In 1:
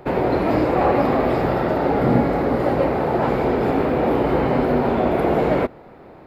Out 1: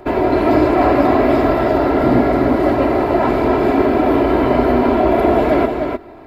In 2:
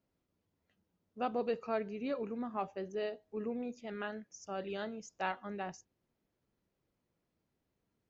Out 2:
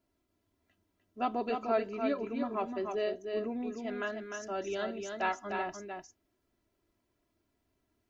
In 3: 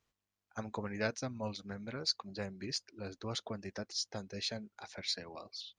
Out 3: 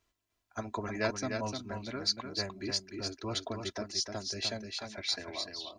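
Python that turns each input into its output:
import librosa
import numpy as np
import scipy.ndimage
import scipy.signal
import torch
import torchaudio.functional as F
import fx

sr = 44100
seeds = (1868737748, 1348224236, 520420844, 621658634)

y = x + 0.65 * np.pad(x, (int(3.0 * sr / 1000.0), 0))[:len(x)]
y = y + 10.0 ** (-5.5 / 20.0) * np.pad(y, (int(301 * sr / 1000.0), 0))[:len(y)]
y = y * 10.0 ** (2.5 / 20.0)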